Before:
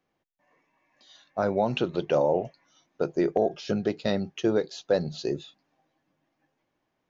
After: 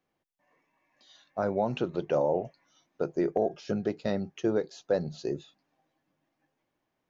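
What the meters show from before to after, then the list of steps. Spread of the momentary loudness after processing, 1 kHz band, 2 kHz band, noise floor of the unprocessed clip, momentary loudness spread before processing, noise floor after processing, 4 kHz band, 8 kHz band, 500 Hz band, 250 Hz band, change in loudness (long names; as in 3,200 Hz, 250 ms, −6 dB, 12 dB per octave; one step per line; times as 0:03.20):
8 LU, −3.5 dB, −5.5 dB, −78 dBFS, 8 LU, −81 dBFS, −8.5 dB, can't be measured, −3.0 dB, −3.0 dB, −3.0 dB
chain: dynamic equaliser 3,600 Hz, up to −7 dB, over −51 dBFS, Q 1.1
level −3 dB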